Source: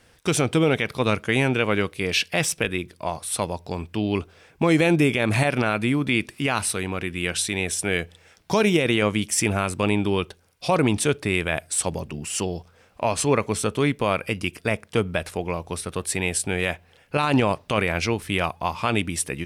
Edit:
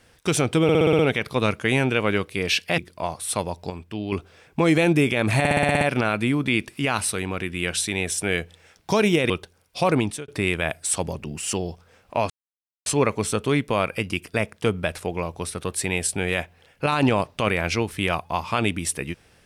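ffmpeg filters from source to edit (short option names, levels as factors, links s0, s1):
-filter_complex "[0:a]asplit=20[s0][s1][s2][s3][s4][s5][s6][s7][s8][s9][s10][s11][s12][s13][s14][s15][s16][s17][s18][s19];[s0]atrim=end=0.692[s20];[s1]atrim=start=0.628:end=0.692[s21];[s2]atrim=start=0.628:end=0.692[s22];[s3]atrim=start=0.628:end=0.692[s23];[s4]atrim=start=0.628:end=0.692[s24];[s5]atrim=start=0.628:end=0.692[s25];[s6]atrim=start=0.628:end=2.422[s26];[s7]atrim=start=2.808:end=3.732[s27];[s8]atrim=start=3.728:end=4.152,asetpts=PTS-STARTPTS,volume=0.531[s28];[s9]atrim=start=4.148:end=5.482[s29];[s10]atrim=start=5.418:end=5.482[s30];[s11]atrim=start=5.418:end=5.482[s31];[s12]atrim=start=5.418:end=5.482[s32];[s13]atrim=start=5.418:end=5.482[s33];[s14]atrim=start=5.418:end=5.482[s34];[s15]atrim=start=5.418:end=5.482[s35];[s16]atrim=start=5.418:end=8.912[s36];[s17]atrim=start=10.168:end=11.15,asetpts=PTS-STARTPTS,afade=t=out:st=0.652:d=0.33[s37];[s18]atrim=start=11.15:end=13.17,asetpts=PTS-STARTPTS,afade=t=in:d=0.004:c=hsin,afade=t=out:st=2.016:d=0.004:c=hsin,apad=pad_dur=0.56[s38];[s19]atrim=start=13.17,asetpts=PTS-STARTPTS,afade=t=in:d=0.004:c=hsin[s39];[s20][s21]acrossfade=d=0.004:c1=hsin:c2=hsin[s40];[s40][s22]acrossfade=d=0.004:c1=hsin:c2=hsin[s41];[s41][s23]acrossfade=d=0.004:c1=hsin:c2=hsin[s42];[s42][s24]acrossfade=d=0.004:c1=hsin:c2=hsin[s43];[s43][s25]acrossfade=d=0.004:c1=hsin:c2=hsin[s44];[s44][s26]acrossfade=d=0.004:c1=hsin:c2=hsin[s45];[s45][s27]acrossfade=d=0.004:c1=hsin:c2=hsin[s46];[s46][s28]acrossfade=d=0.004:c1=hsin:c2=hsin[s47];[s47][s29]acrossfade=d=0.004:c1=hsin:c2=hsin[s48];[s48][s30]acrossfade=d=0.004:c1=hsin:c2=hsin[s49];[s49][s31]acrossfade=d=0.004:c1=hsin:c2=hsin[s50];[s50][s32]acrossfade=d=0.004:c1=hsin:c2=hsin[s51];[s51][s33]acrossfade=d=0.004:c1=hsin:c2=hsin[s52];[s52][s34]acrossfade=d=0.004:c1=hsin:c2=hsin[s53];[s53][s35]acrossfade=d=0.004:c1=hsin:c2=hsin[s54];[s54][s36]acrossfade=d=0.004:c1=hsin:c2=hsin[s55];[s37][s38][s39]concat=n=3:v=0:a=1[s56];[s55][s56]acrossfade=d=0.004:c1=hsin:c2=hsin"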